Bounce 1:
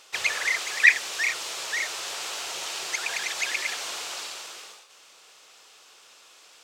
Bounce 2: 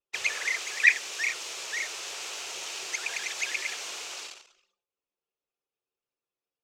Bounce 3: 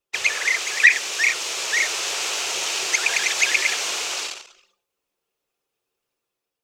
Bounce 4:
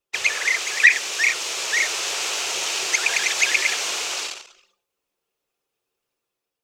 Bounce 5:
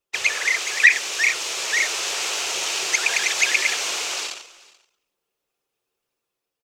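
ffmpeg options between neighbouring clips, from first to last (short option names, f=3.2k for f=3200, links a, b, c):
-af "anlmdn=2.51,equalizer=f=400:t=o:w=0.67:g=5,equalizer=f=2.5k:t=o:w=0.67:g=5,equalizer=f=6.3k:t=o:w=0.67:g=5,volume=-7dB"
-af "dynaudnorm=f=170:g=7:m=4.5dB,alimiter=level_in=8.5dB:limit=-1dB:release=50:level=0:latency=1,volume=-1dB"
-af anull
-af "aecho=1:1:433:0.0708"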